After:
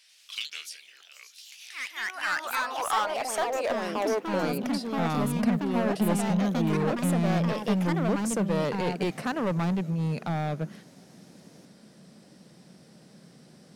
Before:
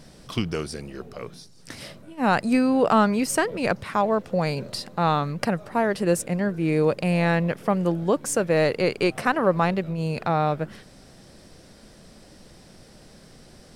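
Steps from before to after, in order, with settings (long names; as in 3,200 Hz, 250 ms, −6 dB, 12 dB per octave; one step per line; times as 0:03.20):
high-pass filter sweep 2,600 Hz → 170 Hz, 0:01.70–0:05.20
hard clipping −17 dBFS, distortion −9 dB
delay with pitch and tempo change per echo 90 ms, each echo +3 semitones, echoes 2
level −6.5 dB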